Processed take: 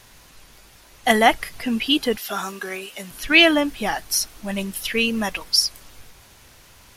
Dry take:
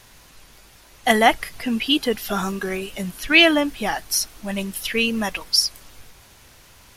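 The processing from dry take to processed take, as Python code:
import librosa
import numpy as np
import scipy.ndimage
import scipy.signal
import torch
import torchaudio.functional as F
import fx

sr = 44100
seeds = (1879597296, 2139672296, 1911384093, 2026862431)

y = fx.highpass(x, sr, hz=650.0, slope=6, at=(2.17, 3.11))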